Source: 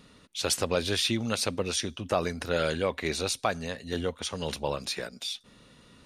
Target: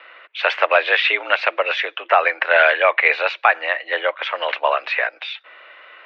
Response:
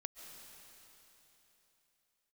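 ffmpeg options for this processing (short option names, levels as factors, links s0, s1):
-af "highpass=f=400:t=q:w=0.5412,highpass=f=400:t=q:w=1.307,lowpass=f=2300:t=q:w=0.5176,lowpass=f=2300:t=q:w=0.7071,lowpass=f=2300:t=q:w=1.932,afreqshift=75,aderivative,alimiter=level_in=50.1:limit=0.891:release=50:level=0:latency=1,volume=0.891"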